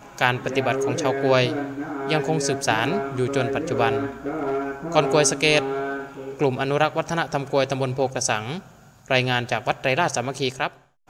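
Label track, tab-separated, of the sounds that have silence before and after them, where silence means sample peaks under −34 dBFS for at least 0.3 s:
9.060000	10.690000	sound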